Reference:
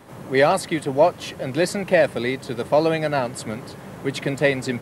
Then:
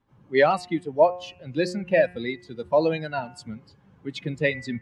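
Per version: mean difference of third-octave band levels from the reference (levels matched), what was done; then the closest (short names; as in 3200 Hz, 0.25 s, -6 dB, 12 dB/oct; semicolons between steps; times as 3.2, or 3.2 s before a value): 10.5 dB: per-bin expansion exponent 1.5; spectral noise reduction 8 dB; LPF 4500 Hz 12 dB/oct; de-hum 179.3 Hz, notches 16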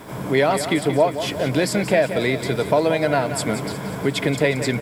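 5.0 dB: ripple EQ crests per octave 1.7, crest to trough 6 dB; compressor 2.5:1, threshold -26 dBFS, peak gain reduction 11.5 dB; added noise white -66 dBFS; feedback echo 0.179 s, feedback 53%, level -10.5 dB; gain +7.5 dB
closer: second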